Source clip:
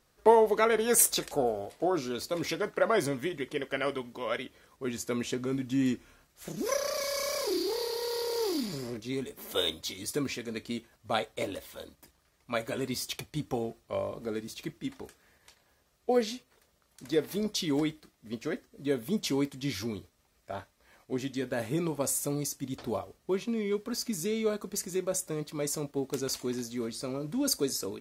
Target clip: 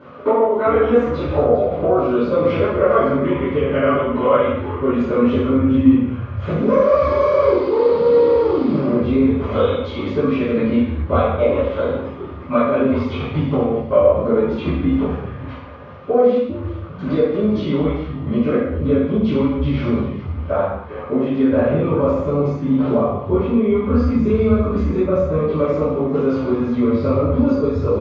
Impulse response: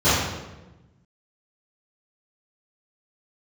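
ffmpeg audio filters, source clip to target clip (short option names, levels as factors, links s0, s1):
-filter_complex "[0:a]acompressor=threshold=0.00891:ratio=6,highpass=200,equalizer=f=220:t=q:w=4:g=6,equalizer=f=320:t=q:w=4:g=-5,equalizer=f=530:t=q:w=4:g=6,equalizer=f=830:t=q:w=4:g=-4,equalizer=f=1200:t=q:w=4:g=8,equalizer=f=1800:t=q:w=4:g=-6,lowpass=f=2600:w=0.5412,lowpass=f=2600:w=1.3066,acompressor=mode=upward:threshold=0.00141:ratio=2.5,asplit=4[s0][s1][s2][s3];[s1]adelay=401,afreqshift=-150,volume=0.211[s4];[s2]adelay=802,afreqshift=-300,volume=0.0716[s5];[s3]adelay=1203,afreqshift=-450,volume=0.0245[s6];[s0][s4][s5][s6]amix=inputs=4:normalize=0[s7];[1:a]atrim=start_sample=2205,afade=t=out:st=0.34:d=0.01,atrim=end_sample=15435[s8];[s7][s8]afir=irnorm=-1:irlink=0,volume=1.26"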